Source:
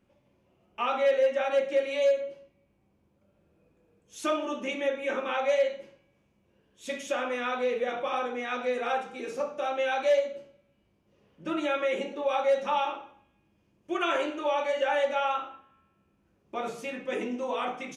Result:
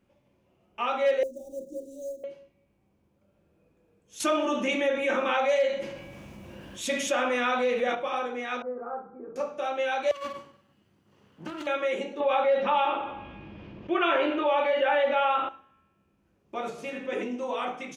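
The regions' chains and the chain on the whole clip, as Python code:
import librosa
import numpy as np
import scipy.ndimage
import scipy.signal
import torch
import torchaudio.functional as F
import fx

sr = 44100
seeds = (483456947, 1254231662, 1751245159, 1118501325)

y = fx.chain(x, sr, fx.law_mismatch(coded='A'),
    fx.cheby1_bandstop(low_hz=400.0, high_hz=7000.0, order=3), at=(1.23, 2.24))
y = fx.chain(y, sr, fx.notch(hz=430.0, q=5.5),
    fx.env_flatten(amount_pct=50), at=(4.2, 7.95))
y = fx.chain(y, sr, fx.ellip_lowpass(hz=1300.0, order=4, stop_db=60),
    fx.peak_eq(hz=730.0, db=-6.0, octaves=2.9), at=(8.62, 9.36))
y = fx.chain(y, sr, fx.lower_of_two(delay_ms=0.65),
    fx.highpass(hz=82.0, slope=24),
    fx.over_compress(threshold_db=-37.0, ratio=-1.0), at=(10.11, 11.67))
y = fx.chain(y, sr, fx.lowpass(hz=3700.0, slope=24),
    fx.env_flatten(amount_pct=50), at=(12.2, 15.49))
y = fx.chain(y, sr, fx.high_shelf(hz=6500.0, db=-8.0),
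    fx.echo_feedback(ms=81, feedback_pct=31, wet_db=-6.5), at=(16.7, 17.23))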